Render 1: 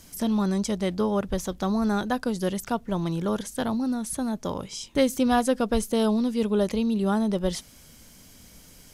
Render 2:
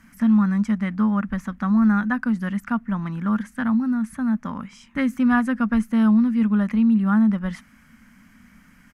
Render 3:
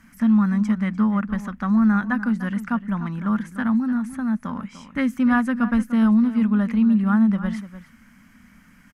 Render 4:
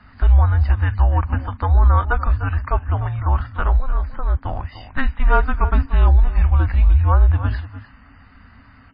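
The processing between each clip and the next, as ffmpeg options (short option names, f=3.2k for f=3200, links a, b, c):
-af "firequalizer=gain_entry='entry(140,0);entry(220,14);entry(370,-11);entry(1200,11);entry(1800,13);entry(3600,-10)':delay=0.05:min_phase=1,volume=-4.5dB"
-filter_complex "[0:a]asplit=2[a][b];[b]adelay=297.4,volume=-13dB,highshelf=f=4k:g=-6.69[c];[a][c]amix=inputs=2:normalize=0"
-af "afreqshift=-280,volume=5.5dB" -ar 11025 -c:a libmp3lame -b:a 16k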